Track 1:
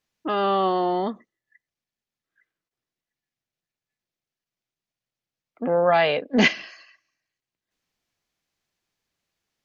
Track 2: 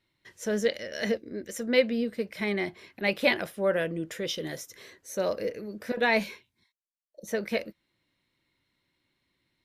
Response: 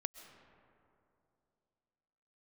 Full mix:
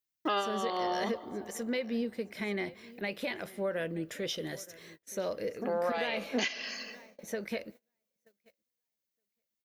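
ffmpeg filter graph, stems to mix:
-filter_complex "[0:a]aemphasis=mode=production:type=riaa,acompressor=threshold=-23dB:ratio=8,volume=1.5dB,asplit=2[link_01][link_02];[link_02]volume=-9dB[link_03];[1:a]alimiter=limit=-22dB:level=0:latency=1:release=160,volume=-4dB,asplit=4[link_04][link_05][link_06][link_07];[link_05]volume=-17.5dB[link_08];[link_06]volume=-19dB[link_09];[link_07]apad=whole_len=425135[link_10];[link_01][link_10]sidechaincompress=threshold=-53dB:ratio=8:attack=16:release=209[link_11];[2:a]atrim=start_sample=2205[link_12];[link_03][link_08]amix=inputs=2:normalize=0[link_13];[link_13][link_12]afir=irnorm=-1:irlink=0[link_14];[link_09]aecho=0:1:923|1846|2769|3692:1|0.27|0.0729|0.0197[link_15];[link_11][link_04][link_14][link_15]amix=inputs=4:normalize=0,agate=range=-24dB:threshold=-51dB:ratio=16:detection=peak,alimiter=limit=-21dB:level=0:latency=1:release=436"

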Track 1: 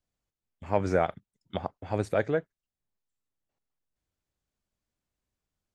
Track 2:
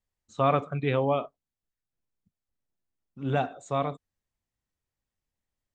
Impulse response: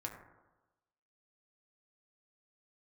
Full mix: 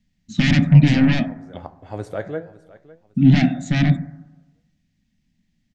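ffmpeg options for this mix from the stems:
-filter_complex "[0:a]bandreject=frequency=2400:width=9.6,flanger=delay=8.3:depth=8.8:regen=77:speed=0.74:shape=triangular,volume=0.5dB,asplit=3[link_01][link_02][link_03];[link_02]volume=-7.5dB[link_04];[link_03]volume=-17dB[link_05];[1:a]highshelf=frequency=2700:gain=7,aeval=exprs='0.316*sin(PI/2*5.62*val(0)/0.316)':channel_layout=same,firequalizer=gain_entry='entry(120,0);entry(170,15);entry(250,11);entry(440,-26);entry(660,-10);entry(1100,-25);entry(1800,-4);entry(6300,-11);entry(10000,-29)':delay=0.05:min_phase=1,volume=-4dB,asplit=3[link_06][link_07][link_08];[link_07]volume=-5dB[link_09];[link_08]apad=whole_len=253312[link_10];[link_01][link_10]sidechaincompress=threshold=-37dB:ratio=8:attack=16:release=309[link_11];[2:a]atrim=start_sample=2205[link_12];[link_04][link_09]amix=inputs=2:normalize=0[link_13];[link_13][link_12]afir=irnorm=-1:irlink=0[link_14];[link_05]aecho=0:1:556|1112|1668|2224:1|0.3|0.09|0.027[link_15];[link_11][link_06][link_14][link_15]amix=inputs=4:normalize=0"

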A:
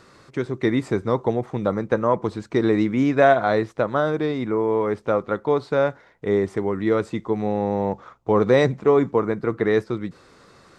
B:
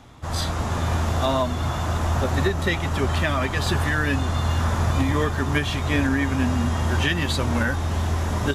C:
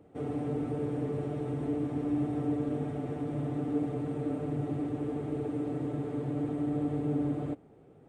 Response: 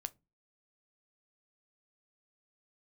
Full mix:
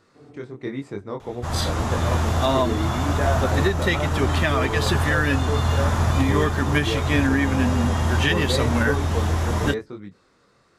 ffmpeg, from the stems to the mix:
-filter_complex "[0:a]flanger=delay=20:depth=5.3:speed=1,volume=-8.5dB,asplit=3[link_01][link_02][link_03];[link_02]volume=-9dB[link_04];[1:a]adelay=1200,volume=-1.5dB,asplit=2[link_05][link_06];[link_06]volume=-4.5dB[link_07];[2:a]volume=-15.5dB,asplit=2[link_08][link_09];[link_09]volume=-9.5dB[link_10];[link_03]apad=whole_len=356429[link_11];[link_08][link_11]sidechaincompress=threshold=-43dB:ratio=8:attack=16:release=484[link_12];[3:a]atrim=start_sample=2205[link_13];[link_04][link_07][link_10]amix=inputs=3:normalize=0[link_14];[link_14][link_13]afir=irnorm=-1:irlink=0[link_15];[link_01][link_05][link_12][link_15]amix=inputs=4:normalize=0"

